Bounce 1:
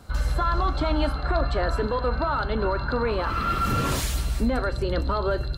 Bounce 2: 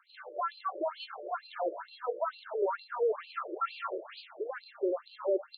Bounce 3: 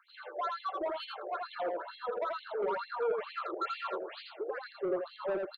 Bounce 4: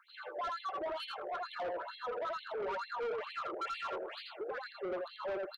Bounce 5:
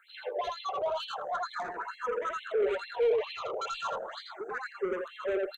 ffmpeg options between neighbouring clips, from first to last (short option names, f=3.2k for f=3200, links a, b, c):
-af "tiltshelf=f=660:g=5,afftfilt=real='re*between(b*sr/1024,430*pow(3500/430,0.5+0.5*sin(2*PI*2.2*pts/sr))/1.41,430*pow(3500/430,0.5+0.5*sin(2*PI*2.2*pts/sr))*1.41)':imag='im*between(b*sr/1024,430*pow(3500/430,0.5+0.5*sin(2*PI*2.2*pts/sr))/1.41,430*pow(3500/430,0.5+0.5*sin(2*PI*2.2*pts/sr))*1.41)':win_size=1024:overlap=0.75,volume=-2dB"
-af "asoftclip=type=tanh:threshold=-28dB,aecho=1:1:83:0.668"
-filter_complex "[0:a]acrossover=split=350[a][b];[a]acompressor=threshold=-56dB:ratio=6[c];[c][b]amix=inputs=2:normalize=0,asoftclip=type=tanh:threshold=-34.5dB,volume=1dB"
-filter_complex "[0:a]superequalizer=6b=0.631:7b=1.58:14b=0.501:15b=2.82,asplit=2[a][b];[b]afreqshift=0.36[c];[a][c]amix=inputs=2:normalize=1,volume=8dB"